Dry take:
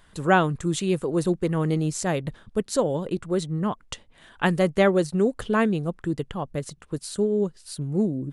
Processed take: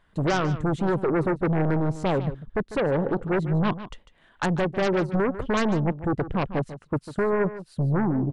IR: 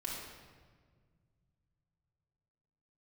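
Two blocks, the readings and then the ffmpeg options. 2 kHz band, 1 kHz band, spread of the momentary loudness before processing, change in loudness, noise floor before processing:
-1.5 dB, -0.5 dB, 12 LU, -0.5 dB, -56 dBFS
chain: -filter_complex "[0:a]afwtdn=0.0501,bass=f=250:g=-1,treble=f=4000:g=-13,alimiter=limit=0.119:level=0:latency=1:release=375,aeval=exprs='0.119*(cos(1*acos(clip(val(0)/0.119,-1,1)))-cos(1*PI/2))+0.0168*(cos(2*acos(clip(val(0)/0.119,-1,1)))-cos(2*PI/2))+0.0422*(cos(5*acos(clip(val(0)/0.119,-1,1)))-cos(5*PI/2))':c=same,asplit=2[s0][s1];[s1]aecho=0:1:148:0.211[s2];[s0][s2]amix=inputs=2:normalize=0,volume=1.19"

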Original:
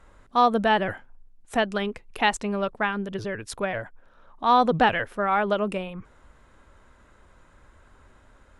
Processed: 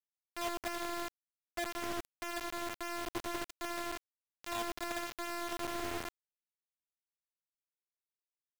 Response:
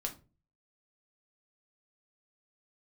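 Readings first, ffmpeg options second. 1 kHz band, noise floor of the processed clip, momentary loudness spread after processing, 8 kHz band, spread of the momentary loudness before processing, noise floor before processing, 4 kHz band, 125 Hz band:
-17.5 dB, under -85 dBFS, 5 LU, -2.0 dB, 13 LU, -56 dBFS, -10.0 dB, -21.0 dB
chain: -filter_complex "[0:a]acrossover=split=410[s0][s1];[s0]asoftclip=type=hard:threshold=0.0316[s2];[s2][s1]amix=inputs=2:normalize=0,bandpass=f=340:t=q:w=0.5:csg=0,asplit=5[s3][s4][s5][s6][s7];[s4]adelay=85,afreqshift=-95,volume=0.531[s8];[s5]adelay=170,afreqshift=-190,volume=0.18[s9];[s6]adelay=255,afreqshift=-285,volume=0.0617[s10];[s7]adelay=340,afreqshift=-380,volume=0.0209[s11];[s3][s8][s9][s10][s11]amix=inputs=5:normalize=0,afftfilt=real='hypot(re,im)*cos(PI*b)':imag='0':win_size=512:overlap=0.75,areverse,acompressor=threshold=0.00708:ratio=8,areverse,acrusher=bits=6:mix=0:aa=0.000001,volume=2.11"

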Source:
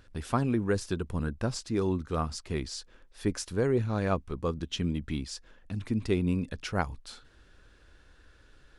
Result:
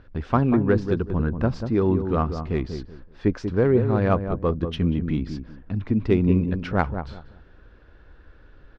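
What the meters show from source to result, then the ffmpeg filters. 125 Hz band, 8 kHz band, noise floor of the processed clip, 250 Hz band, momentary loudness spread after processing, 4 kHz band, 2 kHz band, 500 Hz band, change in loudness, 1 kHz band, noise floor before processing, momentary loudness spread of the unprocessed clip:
+8.5 dB, under -10 dB, -51 dBFS, +8.5 dB, 12 LU, -2.5 dB, +5.0 dB, +8.0 dB, +8.0 dB, +7.0 dB, -59 dBFS, 11 LU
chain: -filter_complex "[0:a]lowpass=f=5300:w=0.5412,lowpass=f=5300:w=1.3066,aemphasis=mode=reproduction:type=cd,asplit=2[s0][s1];[s1]adynamicsmooth=sensitivity=2:basefreq=2400,volume=1.33[s2];[s0][s2]amix=inputs=2:normalize=0,asplit=2[s3][s4];[s4]adelay=189,lowpass=f=880:p=1,volume=0.447,asplit=2[s5][s6];[s6]adelay=189,lowpass=f=880:p=1,volume=0.26,asplit=2[s7][s8];[s8]adelay=189,lowpass=f=880:p=1,volume=0.26[s9];[s3][s5][s7][s9]amix=inputs=4:normalize=0"

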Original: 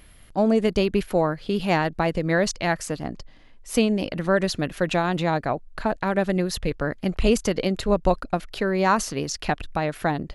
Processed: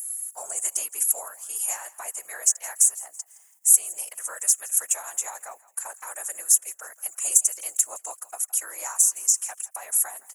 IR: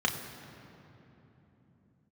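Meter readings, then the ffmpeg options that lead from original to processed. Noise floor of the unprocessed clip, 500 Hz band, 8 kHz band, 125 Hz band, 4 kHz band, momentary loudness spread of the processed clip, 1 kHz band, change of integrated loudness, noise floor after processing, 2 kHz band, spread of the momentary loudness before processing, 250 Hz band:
-49 dBFS, -23.5 dB, +17.5 dB, under -40 dB, -10.0 dB, 15 LU, -15.0 dB, +1.5 dB, -58 dBFS, -13.0 dB, 7 LU, under -40 dB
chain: -filter_complex "[0:a]highpass=f=790:w=0.5412,highpass=f=790:w=1.3066,highshelf=f=5600:t=q:w=3:g=10,acompressor=threshold=0.0501:ratio=4,acrusher=bits=11:mix=0:aa=0.000001,aexciter=amount=8.9:drive=8:freq=6100,afftfilt=real='hypot(re,im)*cos(2*PI*random(0))':imag='hypot(re,im)*sin(2*PI*random(1))':win_size=512:overlap=0.75,asplit=2[s0][s1];[s1]asplit=3[s2][s3][s4];[s2]adelay=165,afreqshift=38,volume=0.0944[s5];[s3]adelay=330,afreqshift=76,volume=0.0367[s6];[s4]adelay=495,afreqshift=114,volume=0.0143[s7];[s5][s6][s7]amix=inputs=3:normalize=0[s8];[s0][s8]amix=inputs=2:normalize=0,volume=0.708"

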